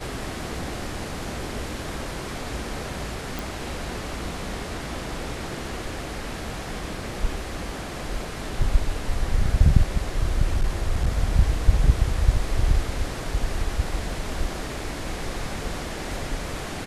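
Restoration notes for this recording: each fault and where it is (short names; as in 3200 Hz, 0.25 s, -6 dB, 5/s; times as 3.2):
3.39 pop
10.45–11.08 clipped -15.5 dBFS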